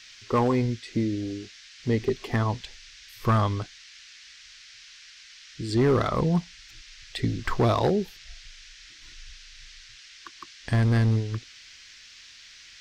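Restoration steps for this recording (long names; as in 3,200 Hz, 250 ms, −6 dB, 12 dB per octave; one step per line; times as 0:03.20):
clipped peaks rebuilt −16 dBFS
noise reduction from a noise print 21 dB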